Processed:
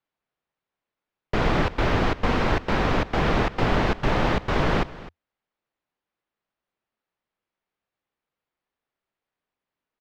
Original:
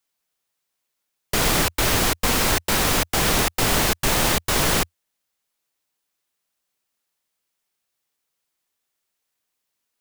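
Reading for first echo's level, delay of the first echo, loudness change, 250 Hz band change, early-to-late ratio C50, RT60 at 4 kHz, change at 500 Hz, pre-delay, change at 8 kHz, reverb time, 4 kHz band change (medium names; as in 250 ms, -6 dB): -18.0 dB, 257 ms, -4.5 dB, +1.0 dB, no reverb, no reverb, +0.5 dB, no reverb, -25.0 dB, no reverb, -10.5 dB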